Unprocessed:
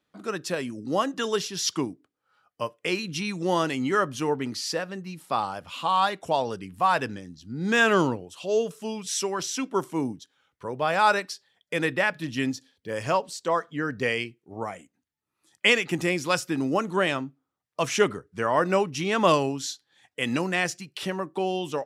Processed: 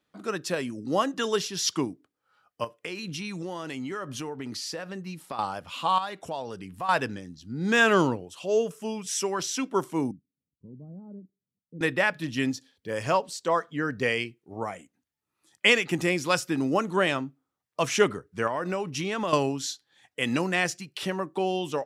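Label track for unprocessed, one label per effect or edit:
2.640000	5.390000	downward compressor, threshold −31 dBFS
5.980000	6.890000	downward compressor 2 to 1, threshold −36 dBFS
8.390000	9.260000	parametric band 4,000 Hz −7.5 dB 0.44 octaves
10.110000	11.810000	transistor ladder low-pass 270 Hz, resonance 40%
18.470000	19.330000	downward compressor 4 to 1, threshold −26 dBFS

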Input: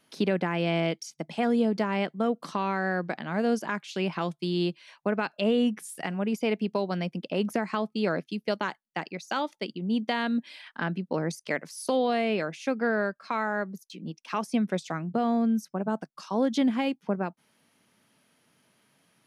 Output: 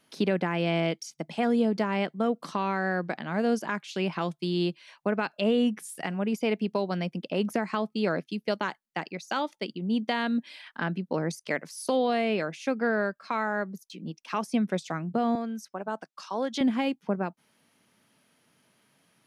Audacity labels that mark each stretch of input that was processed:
15.350000	16.610000	meter weighting curve A

